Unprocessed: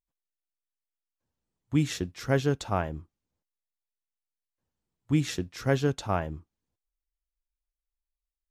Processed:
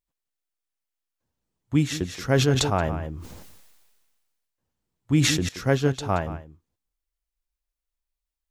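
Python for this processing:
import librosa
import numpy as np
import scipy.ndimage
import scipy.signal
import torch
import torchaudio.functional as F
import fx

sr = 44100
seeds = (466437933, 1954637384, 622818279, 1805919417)

y = x + 10.0 ** (-14.5 / 20.0) * np.pad(x, (int(176 * sr / 1000.0), 0))[:len(x)]
y = fx.sustainer(y, sr, db_per_s=35.0, at=(2.06, 5.49))
y = y * librosa.db_to_amplitude(3.5)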